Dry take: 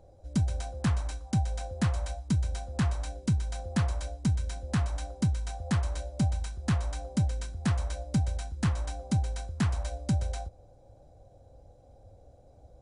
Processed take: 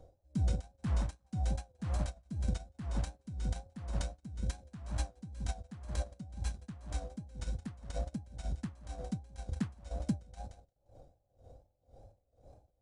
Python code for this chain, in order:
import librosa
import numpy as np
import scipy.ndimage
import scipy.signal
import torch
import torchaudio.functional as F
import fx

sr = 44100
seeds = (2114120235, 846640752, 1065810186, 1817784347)

p1 = 10.0 ** (-35.0 / 20.0) * np.tanh(x / 10.0 ** (-35.0 / 20.0))
p2 = x + (p1 * 10.0 ** (-9.0 / 20.0))
p3 = fx.dynamic_eq(p2, sr, hz=230.0, q=0.92, threshold_db=-41.0, ratio=4.0, max_db=8)
p4 = fx.transient(p3, sr, attack_db=-3, sustain_db=6)
p5 = fx.wow_flutter(p4, sr, seeds[0], rate_hz=2.1, depth_cents=79.0)
p6 = fx.echo_feedback(p5, sr, ms=174, feedback_pct=25, wet_db=-13.5)
p7 = fx.transient(p6, sr, attack_db=5, sustain_db=-10)
p8 = p7 * 10.0 ** (-26 * (0.5 - 0.5 * np.cos(2.0 * np.pi * 2.0 * np.arange(len(p7)) / sr)) / 20.0)
y = p8 * 10.0 ** (-2.5 / 20.0)